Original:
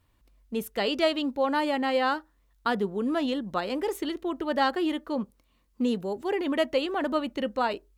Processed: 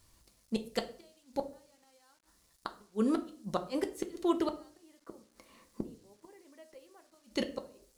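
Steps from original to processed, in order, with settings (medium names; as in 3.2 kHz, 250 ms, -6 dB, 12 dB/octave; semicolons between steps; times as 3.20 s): 4.83–7.01 s: graphic EQ 250/500/1000/2000 Hz +8/+10/+8/+10 dB; inverted gate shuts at -19 dBFS, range -42 dB; reverberation RT60 0.50 s, pre-delay 5 ms, DRR 5.5 dB; word length cut 12-bit, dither none; high-order bell 6.9 kHz +9.5 dB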